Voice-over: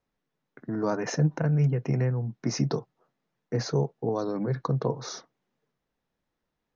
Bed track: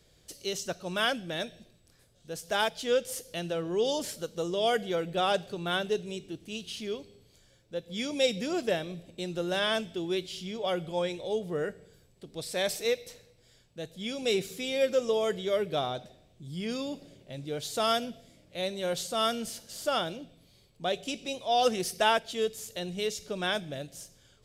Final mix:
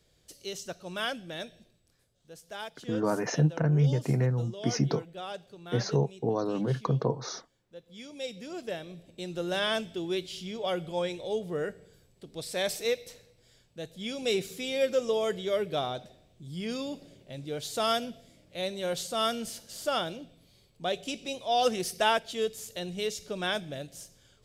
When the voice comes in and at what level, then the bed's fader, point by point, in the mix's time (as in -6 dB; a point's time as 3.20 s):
2.20 s, -0.5 dB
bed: 1.61 s -4.5 dB
2.54 s -12 dB
8.14 s -12 dB
9.48 s -0.5 dB